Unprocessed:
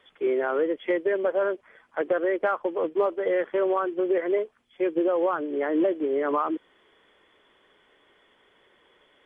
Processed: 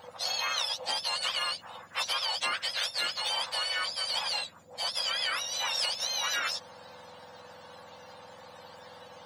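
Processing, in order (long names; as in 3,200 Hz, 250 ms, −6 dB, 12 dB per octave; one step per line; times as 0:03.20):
frequency axis turned over on the octave scale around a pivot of 1,300 Hz
every bin compressed towards the loudest bin 2 to 1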